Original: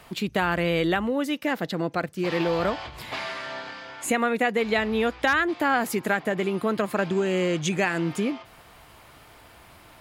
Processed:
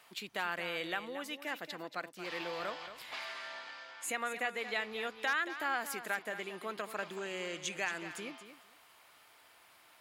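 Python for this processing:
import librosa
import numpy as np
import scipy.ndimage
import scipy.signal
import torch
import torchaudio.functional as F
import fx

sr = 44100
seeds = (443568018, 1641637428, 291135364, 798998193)

p1 = fx.highpass(x, sr, hz=1200.0, slope=6)
p2 = p1 + fx.echo_feedback(p1, sr, ms=227, feedback_pct=15, wet_db=-11.5, dry=0)
y = p2 * librosa.db_to_amplitude(-8.0)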